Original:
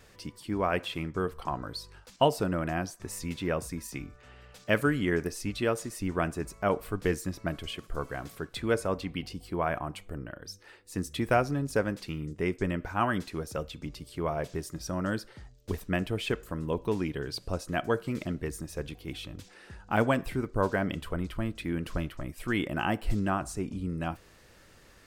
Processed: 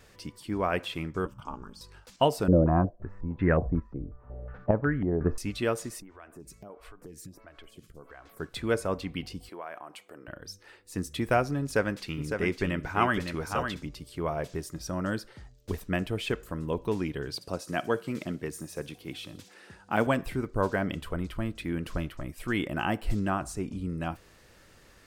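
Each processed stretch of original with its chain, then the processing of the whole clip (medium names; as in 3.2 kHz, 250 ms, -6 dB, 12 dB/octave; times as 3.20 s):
1.25–1.81 s: dynamic bell 1.8 kHz, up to -5 dB, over -46 dBFS, Q 0.98 + static phaser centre 2.8 kHz, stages 8 + ring modulator 120 Hz
2.48–5.38 s: square tremolo 1.1 Hz, depth 60%, duty 45% + tilt EQ -3.5 dB/octave + step-sequenced low-pass 5.5 Hz 510–1800 Hz
6.00–8.40 s: compression 10:1, threshold -40 dBFS + lamp-driven phase shifter 1.5 Hz
9.49–10.28 s: high-pass 410 Hz + compression 2:1, threshold -43 dBFS
11.62–13.82 s: peaking EQ 2.4 kHz +4.5 dB 2.5 oct + delay 556 ms -6.5 dB
17.35–20.07 s: high-pass 130 Hz + feedback echo behind a high-pass 61 ms, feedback 61%, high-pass 5.1 kHz, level -10 dB
whole clip: none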